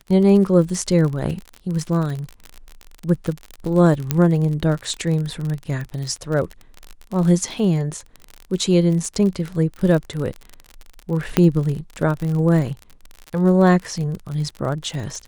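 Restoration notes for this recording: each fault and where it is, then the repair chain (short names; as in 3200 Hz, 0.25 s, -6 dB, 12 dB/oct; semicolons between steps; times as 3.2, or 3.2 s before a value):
crackle 49/s -25 dBFS
4.11 pop -4 dBFS
11.37 pop -1 dBFS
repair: de-click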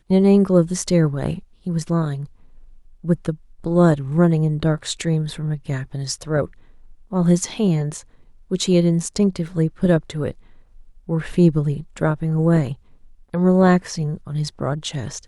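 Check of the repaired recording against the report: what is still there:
none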